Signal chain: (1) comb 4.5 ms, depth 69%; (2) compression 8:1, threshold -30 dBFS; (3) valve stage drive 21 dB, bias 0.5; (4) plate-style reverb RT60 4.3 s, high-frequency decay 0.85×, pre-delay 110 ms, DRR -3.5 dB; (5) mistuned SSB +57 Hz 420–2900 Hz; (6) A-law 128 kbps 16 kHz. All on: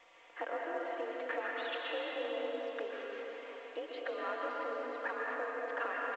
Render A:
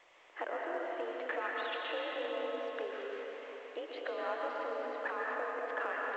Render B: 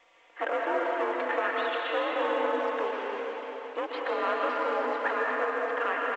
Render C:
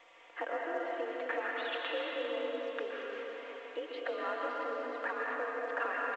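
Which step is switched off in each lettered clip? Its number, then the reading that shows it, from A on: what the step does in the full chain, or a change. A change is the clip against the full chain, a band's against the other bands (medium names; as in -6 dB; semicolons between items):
1, crest factor change +2.0 dB; 2, mean gain reduction 9.5 dB; 3, loudness change +2.0 LU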